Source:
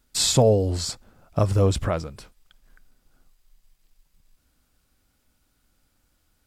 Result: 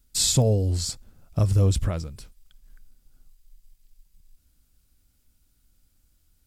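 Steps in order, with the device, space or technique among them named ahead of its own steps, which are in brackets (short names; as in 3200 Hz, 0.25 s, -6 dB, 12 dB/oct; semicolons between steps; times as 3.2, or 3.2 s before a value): smiley-face EQ (low shelf 97 Hz +8 dB; bell 910 Hz -8 dB 2.9 oct; high shelf 6500 Hz +5 dB); gain -1.5 dB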